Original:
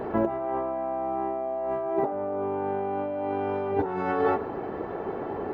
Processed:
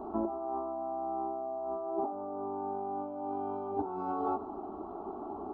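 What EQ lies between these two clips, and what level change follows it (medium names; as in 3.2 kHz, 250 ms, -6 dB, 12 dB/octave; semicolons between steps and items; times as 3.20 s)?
peaking EQ 1 kHz -8 dB 0.35 oct; resonant high shelf 1.5 kHz -9 dB, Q 3; static phaser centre 500 Hz, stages 6; -6.0 dB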